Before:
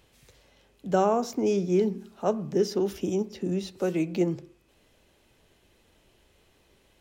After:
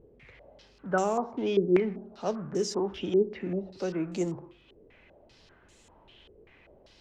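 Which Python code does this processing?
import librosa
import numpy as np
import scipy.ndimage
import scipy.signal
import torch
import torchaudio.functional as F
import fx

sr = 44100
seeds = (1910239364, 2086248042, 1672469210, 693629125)

y = fx.law_mismatch(x, sr, coded='mu')
y = fx.vibrato(y, sr, rate_hz=0.56, depth_cents=13.0)
y = fx.filter_held_lowpass(y, sr, hz=5.1, low_hz=430.0, high_hz=7400.0)
y = F.gain(torch.from_numpy(y), -5.5).numpy()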